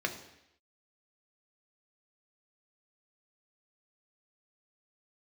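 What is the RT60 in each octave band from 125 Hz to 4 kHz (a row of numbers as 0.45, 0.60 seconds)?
0.75, 0.80, 0.80, 0.80, 0.90, 0.85 seconds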